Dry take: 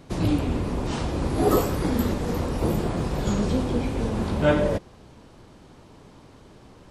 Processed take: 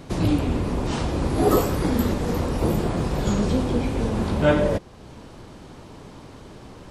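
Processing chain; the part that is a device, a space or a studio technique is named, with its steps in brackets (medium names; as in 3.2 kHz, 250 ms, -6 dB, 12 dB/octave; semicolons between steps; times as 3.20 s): parallel compression (in parallel at -0.5 dB: compression, threshold -41 dBFS, peak gain reduction 24 dB); on the sum: trim +1 dB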